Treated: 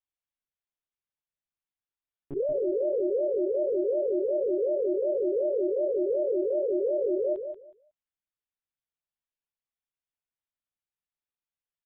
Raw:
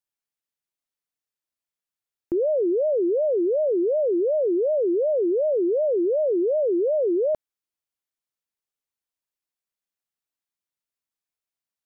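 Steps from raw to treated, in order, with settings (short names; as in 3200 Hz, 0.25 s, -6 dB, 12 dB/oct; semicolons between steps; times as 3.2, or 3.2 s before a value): monotone LPC vocoder at 8 kHz 140 Hz; feedback echo 0.184 s, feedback 19%, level -7.5 dB; gain -6 dB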